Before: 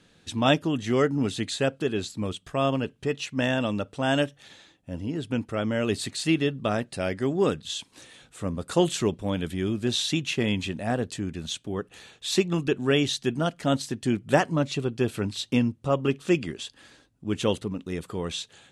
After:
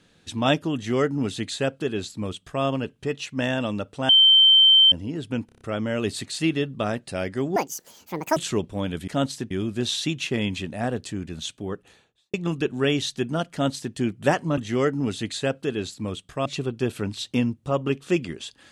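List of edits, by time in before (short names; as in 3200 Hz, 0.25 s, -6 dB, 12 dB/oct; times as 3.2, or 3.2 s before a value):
0.75–2.63 copy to 14.64
4.09–4.92 bleep 3110 Hz -11 dBFS
5.46 stutter 0.03 s, 6 plays
7.41–8.86 speed 180%
11.69–12.4 studio fade out
13.58–14.01 copy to 9.57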